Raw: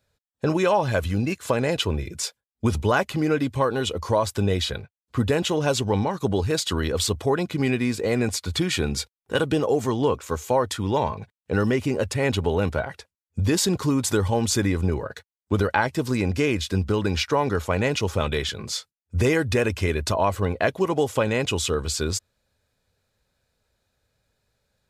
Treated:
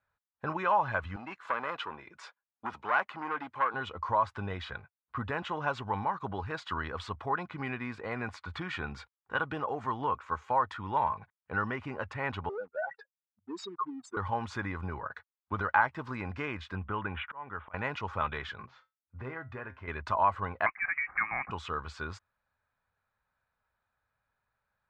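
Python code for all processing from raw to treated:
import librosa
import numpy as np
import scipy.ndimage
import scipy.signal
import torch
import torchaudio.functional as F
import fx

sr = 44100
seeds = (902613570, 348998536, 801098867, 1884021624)

y = fx.chain(x, sr, fx.highpass(hz=270.0, slope=12),
    fx.transformer_sat(knee_hz=1800.0), at=(1.16, 3.74))
y = fx.chain(y, sr, fx.spec_expand(power=3.1),
    fx.highpass(hz=330.0, slope=24),
    fx.leveller(passes=1), at=(12.49, 14.17))
y = fx.chain(y, sr, fx.steep_lowpass(hz=3500.0, slope=96),
    fx.auto_swell(attack_ms=497.0), at=(16.75, 17.74))
y = fx.chain(y, sr, fx.high_shelf(hz=2400.0, db=-10.0),
    fx.comb_fb(f0_hz=130.0, decay_s=0.21, harmonics='all', damping=0.0, mix_pct=70),
    fx.resample_linear(factor=4), at=(18.66, 19.88))
y = fx.chain(y, sr, fx.highpass(hz=490.0, slope=12),
    fx.freq_invert(carrier_hz=2700),
    fx.band_squash(depth_pct=70), at=(20.66, 21.51))
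y = scipy.signal.sosfilt(scipy.signal.butter(2, 1300.0, 'lowpass', fs=sr, output='sos'), y)
y = fx.low_shelf_res(y, sr, hz=710.0, db=-14.0, q=1.5)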